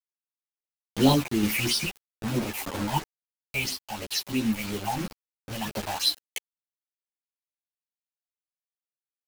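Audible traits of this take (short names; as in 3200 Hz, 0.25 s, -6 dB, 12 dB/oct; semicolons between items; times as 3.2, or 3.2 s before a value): phasing stages 6, 3 Hz, lowest notch 320–2100 Hz; a quantiser's noise floor 6-bit, dither none; random-step tremolo; a shimmering, thickened sound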